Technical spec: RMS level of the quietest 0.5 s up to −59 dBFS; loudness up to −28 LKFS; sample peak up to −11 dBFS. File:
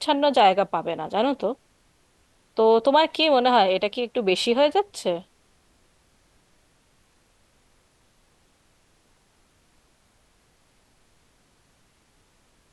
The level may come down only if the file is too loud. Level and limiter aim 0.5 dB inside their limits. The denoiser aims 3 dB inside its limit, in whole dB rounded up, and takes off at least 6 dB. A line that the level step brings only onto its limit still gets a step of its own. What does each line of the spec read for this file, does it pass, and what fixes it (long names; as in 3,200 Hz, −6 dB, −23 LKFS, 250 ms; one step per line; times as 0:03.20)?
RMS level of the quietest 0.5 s −62 dBFS: in spec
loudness −21.5 LKFS: out of spec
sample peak −6.5 dBFS: out of spec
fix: level −7 dB